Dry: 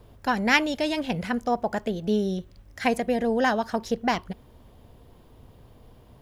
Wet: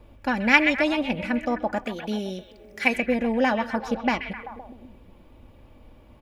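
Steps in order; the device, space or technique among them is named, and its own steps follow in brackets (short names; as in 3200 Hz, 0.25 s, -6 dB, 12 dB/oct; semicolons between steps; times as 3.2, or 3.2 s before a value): bell 2400 Hz +10 dB 0.29 oct; behind a face mask (high shelf 3100 Hz -8 dB); delay with a stepping band-pass 0.129 s, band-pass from 2500 Hz, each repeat -0.7 oct, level -5.5 dB; 1.84–2.96 tilt +2 dB/oct; comb 3.5 ms, depth 52%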